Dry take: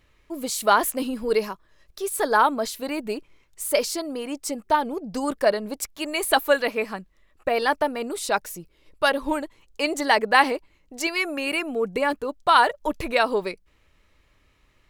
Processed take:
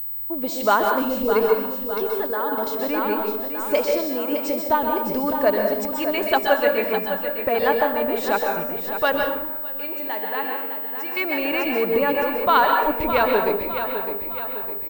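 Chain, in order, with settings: high shelf 2800 Hz -8.5 dB; in parallel at -2 dB: compressor, threshold -34 dBFS, peak gain reduction 19.5 dB; on the sum: notch 4700 Hz, Q 16; on a send: feedback echo 0.608 s, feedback 49%, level -9 dB; 2.04–2.67 on the sum: level quantiser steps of 13 dB; 9.24–11.17 resonator 90 Hz, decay 1.2 s, harmonics all, mix 80%; plate-style reverb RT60 0.68 s, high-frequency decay 0.75×, pre-delay 0.115 s, DRR 2.5 dB; pulse-width modulation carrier 16000 Hz

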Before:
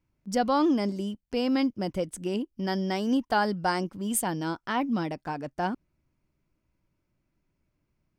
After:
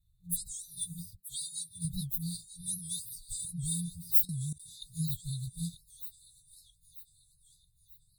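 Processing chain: inharmonic rescaling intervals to 121%; 1.2–1.85 HPF 130 Hz 12 dB/oct; thin delay 0.939 s, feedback 45%, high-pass 2000 Hz, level -14 dB; in parallel at -2 dB: vocal rider 0.5 s; 2.45–3.45 on the sum: bell 170 Hz -10.5 dB 0.25 oct; FFT band-reject 180–3500 Hz; fixed phaser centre 1100 Hz, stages 8; 4.25–4.82 level quantiser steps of 20 dB; bell 10000 Hz +5 dB 2.7 oct; record warp 78 rpm, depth 160 cents; gain +5 dB

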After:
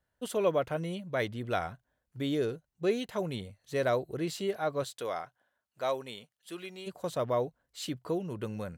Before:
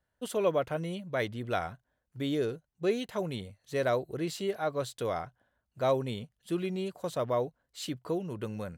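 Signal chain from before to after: 4.83–6.86 HPF 450 Hz -> 1300 Hz 6 dB/oct

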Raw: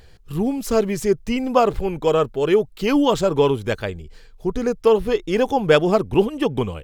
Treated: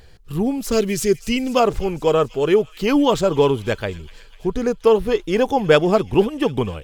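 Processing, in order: 0.72–1.6 EQ curve 410 Hz 0 dB, 840 Hz -8 dB, 3000 Hz +6 dB; thin delay 0.248 s, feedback 68%, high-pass 2200 Hz, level -16.5 dB; gain +1 dB

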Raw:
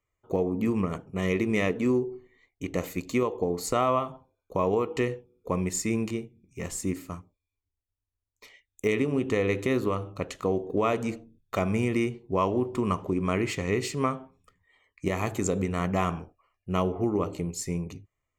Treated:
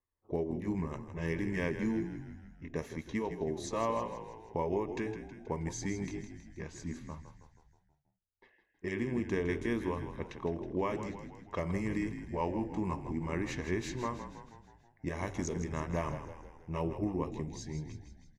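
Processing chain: delay-line pitch shifter -2 st; low-pass opened by the level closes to 1500 Hz, open at -24 dBFS; frequency-shifting echo 0.16 s, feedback 56%, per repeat -45 Hz, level -10 dB; gain -7 dB

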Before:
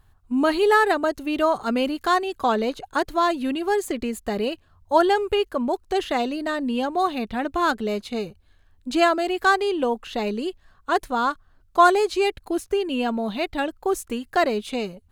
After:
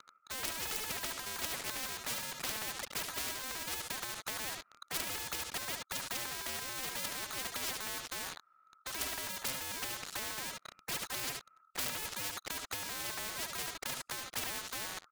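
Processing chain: Wiener smoothing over 25 samples; added harmonics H 3 -36 dB, 6 -25 dB, 7 -11 dB, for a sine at -5 dBFS; treble ducked by the level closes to 1500 Hz, closed at -17.5 dBFS; on a send: echo 72 ms -15.5 dB; on the sum: ring modulator 1300 Hz; in parallel at +1.5 dB: compressor 5:1, threshold -36 dBFS, peak gain reduction 20.5 dB; on the sum: wrapped overs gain 7 dB; HPF 140 Hz 6 dB/oct; sample leveller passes 5; spectral compressor 4:1; gain -8 dB

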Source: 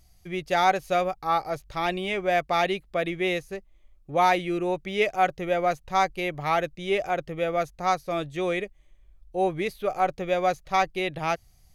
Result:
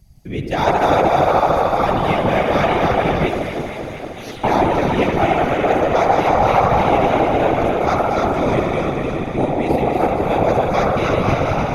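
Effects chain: regenerating reverse delay 0.152 s, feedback 79%, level -3 dB; narrowing echo 77 ms, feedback 84%, band-pass 890 Hz, level -4 dB; 3.29–4.44 spectral gate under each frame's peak -30 dB weak; echo with dull and thin repeats by turns 0.117 s, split 1300 Hz, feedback 85%, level -6 dB; whisperiser; low shelf 300 Hz +11.5 dB

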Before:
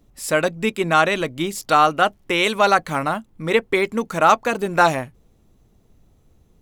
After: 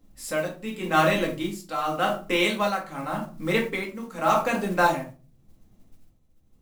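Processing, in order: shoebox room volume 220 m³, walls furnished, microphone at 2.1 m; tremolo 0.87 Hz, depth 72%; modulation noise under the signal 25 dB; gain -7 dB

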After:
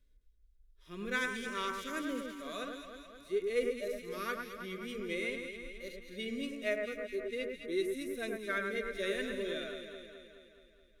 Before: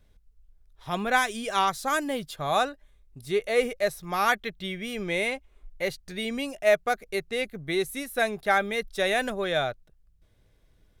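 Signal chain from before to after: fixed phaser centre 330 Hz, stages 4; harmonic-percussive split percussive -18 dB; echo with dull and thin repeats by turns 0.106 s, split 2100 Hz, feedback 77%, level -4 dB; gain -6 dB

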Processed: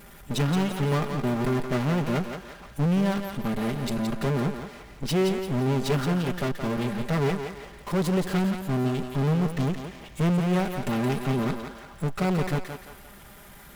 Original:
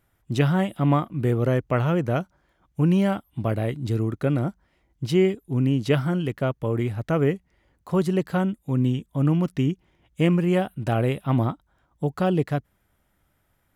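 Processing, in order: minimum comb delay 5 ms; power-law curve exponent 0.5; thinning echo 0.172 s, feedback 41%, high-pass 330 Hz, level -6 dB; gain -7 dB

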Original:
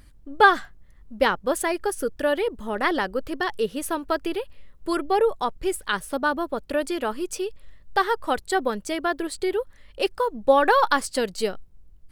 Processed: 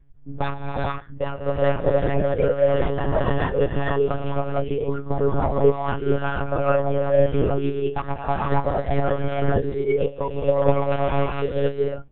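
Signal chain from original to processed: tracing distortion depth 0.47 ms; 9.32–11.37 bell 1300 Hz -5.5 dB 1.1 oct; compressor 8:1, threshold -23 dBFS, peak gain reduction 14.5 dB; sample leveller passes 1; added noise brown -43 dBFS; non-linear reverb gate 0.49 s rising, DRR -4 dB; monotone LPC vocoder at 8 kHz 140 Hz; spectral expander 1.5:1; gain +1 dB

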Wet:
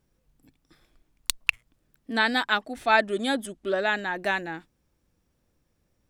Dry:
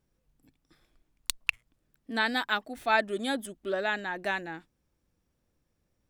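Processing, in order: 2.13–3.87 LPF 11000 Hz 12 dB/oct; gain +4.5 dB

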